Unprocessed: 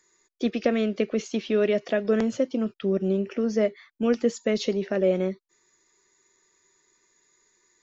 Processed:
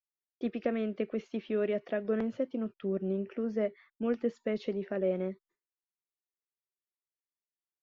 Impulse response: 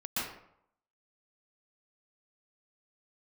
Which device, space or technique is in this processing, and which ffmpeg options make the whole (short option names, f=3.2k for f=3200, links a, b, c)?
hearing-loss simulation: -af "lowpass=2.4k,agate=range=-33dB:threshold=-49dB:ratio=3:detection=peak,volume=-8dB"